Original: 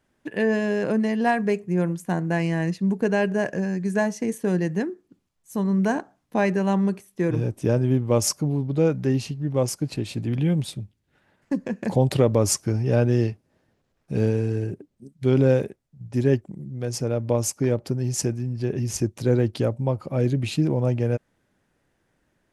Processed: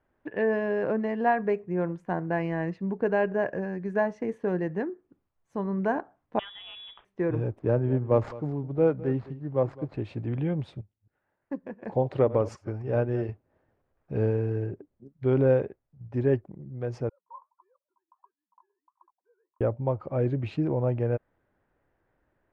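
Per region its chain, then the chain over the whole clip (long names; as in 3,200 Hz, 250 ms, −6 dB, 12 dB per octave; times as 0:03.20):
0:06.39–0:07.05: variable-slope delta modulation 32 kbit/s + downward compressor 4 to 1, threshold −30 dBFS + voice inversion scrambler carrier 3,600 Hz
0:07.59–0:09.94: running median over 15 samples + single-tap delay 213 ms −16 dB + multiband upward and downward expander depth 40%
0:10.81–0:13.29: delay that plays each chunk backwards 134 ms, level −12.5 dB + low-shelf EQ 110 Hz −5 dB + expander for the loud parts, over −37 dBFS
0:17.09–0:19.61: three sine waves on the formant tracks + flat-topped band-pass 1,000 Hz, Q 7.7 + flanger 1.5 Hz, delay 2.5 ms, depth 9.1 ms, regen −58%
whole clip: low-pass filter 1,500 Hz 12 dB per octave; parametric band 190 Hz −8.5 dB 1.4 octaves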